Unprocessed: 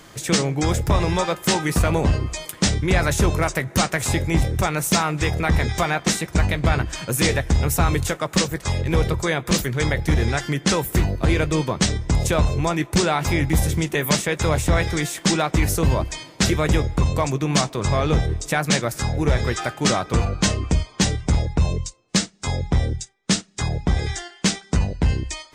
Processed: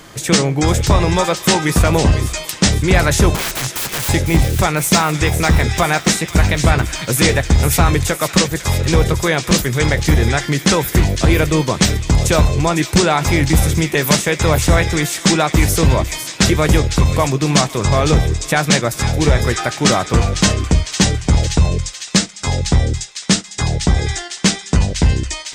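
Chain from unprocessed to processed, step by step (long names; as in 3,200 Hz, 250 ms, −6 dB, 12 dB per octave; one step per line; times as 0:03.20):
0:03.35–0:04.09: wrap-around overflow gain 22.5 dB
on a send: delay with a high-pass on its return 503 ms, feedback 63%, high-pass 2,300 Hz, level −8 dB
on the sum: level +6 dB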